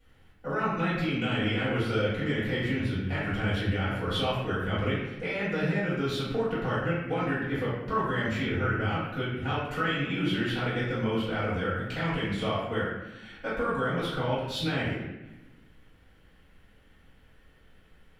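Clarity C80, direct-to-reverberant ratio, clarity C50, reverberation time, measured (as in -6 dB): 2.5 dB, -11.0 dB, -0.5 dB, 1.1 s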